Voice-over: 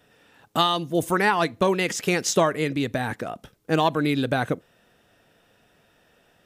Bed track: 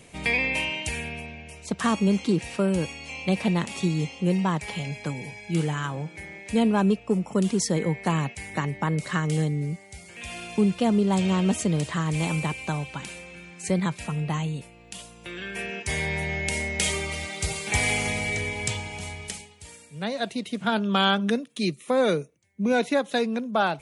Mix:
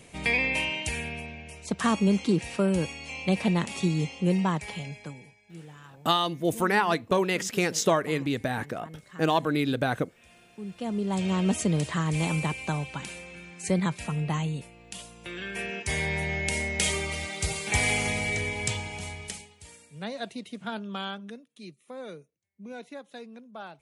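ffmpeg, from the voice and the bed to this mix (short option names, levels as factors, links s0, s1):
-filter_complex "[0:a]adelay=5500,volume=0.708[s0];[1:a]volume=7.94,afade=t=out:st=4.42:d=0.94:silence=0.112202,afade=t=in:st=10.59:d=1.01:silence=0.112202,afade=t=out:st=18.84:d=2.51:silence=0.133352[s1];[s0][s1]amix=inputs=2:normalize=0"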